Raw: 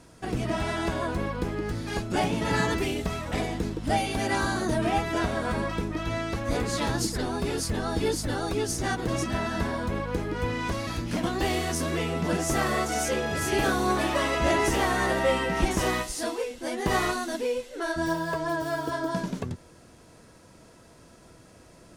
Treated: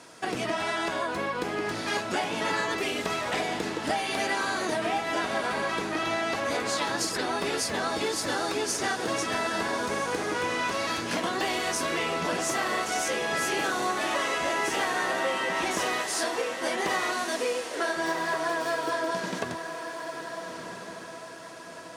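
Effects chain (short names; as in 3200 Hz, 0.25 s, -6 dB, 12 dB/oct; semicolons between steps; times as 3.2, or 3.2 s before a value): weighting filter A; compressor, threshold -33 dBFS, peak gain reduction 11.5 dB; diffused feedback echo 1.35 s, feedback 45%, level -8 dB; gain +7 dB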